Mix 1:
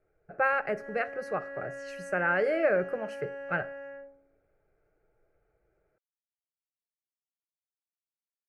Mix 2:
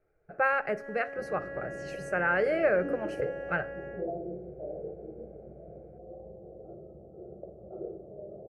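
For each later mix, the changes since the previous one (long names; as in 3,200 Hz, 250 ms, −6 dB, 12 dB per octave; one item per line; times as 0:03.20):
second sound: unmuted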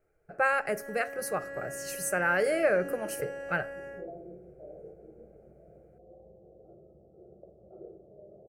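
second sound −8.0 dB
master: remove low-pass filter 2,800 Hz 12 dB per octave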